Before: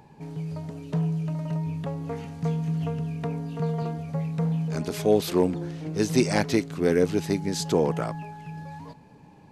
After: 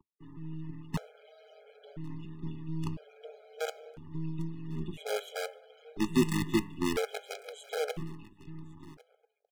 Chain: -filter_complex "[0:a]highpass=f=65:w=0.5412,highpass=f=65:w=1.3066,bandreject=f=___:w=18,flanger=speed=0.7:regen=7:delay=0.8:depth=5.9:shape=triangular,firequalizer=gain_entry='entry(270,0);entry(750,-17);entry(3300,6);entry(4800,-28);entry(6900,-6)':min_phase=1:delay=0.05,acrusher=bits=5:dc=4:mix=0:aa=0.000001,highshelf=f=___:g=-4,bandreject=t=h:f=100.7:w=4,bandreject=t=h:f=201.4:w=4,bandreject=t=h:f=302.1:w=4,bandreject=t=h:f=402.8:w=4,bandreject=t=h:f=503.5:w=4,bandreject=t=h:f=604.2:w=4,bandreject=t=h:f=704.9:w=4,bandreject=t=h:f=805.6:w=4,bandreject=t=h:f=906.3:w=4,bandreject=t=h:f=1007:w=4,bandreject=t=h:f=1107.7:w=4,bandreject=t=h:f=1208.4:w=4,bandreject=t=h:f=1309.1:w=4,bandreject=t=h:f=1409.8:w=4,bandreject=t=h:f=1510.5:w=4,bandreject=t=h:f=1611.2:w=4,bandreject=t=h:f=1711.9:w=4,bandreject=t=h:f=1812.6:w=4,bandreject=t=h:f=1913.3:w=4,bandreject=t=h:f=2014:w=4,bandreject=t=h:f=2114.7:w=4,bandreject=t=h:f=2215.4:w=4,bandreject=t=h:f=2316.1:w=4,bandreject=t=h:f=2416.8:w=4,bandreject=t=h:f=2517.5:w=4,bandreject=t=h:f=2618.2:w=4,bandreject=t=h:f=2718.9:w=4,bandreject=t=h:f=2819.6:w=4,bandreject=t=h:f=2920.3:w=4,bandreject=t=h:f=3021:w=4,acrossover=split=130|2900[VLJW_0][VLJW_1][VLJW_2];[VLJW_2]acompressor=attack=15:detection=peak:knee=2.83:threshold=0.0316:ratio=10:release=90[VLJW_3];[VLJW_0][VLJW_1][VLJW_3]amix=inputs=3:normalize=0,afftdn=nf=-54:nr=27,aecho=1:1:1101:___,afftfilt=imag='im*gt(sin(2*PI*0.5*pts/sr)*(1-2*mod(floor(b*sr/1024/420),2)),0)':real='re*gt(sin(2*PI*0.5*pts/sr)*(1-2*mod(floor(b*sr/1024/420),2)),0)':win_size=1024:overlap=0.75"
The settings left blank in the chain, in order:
1700, 11000, 0.075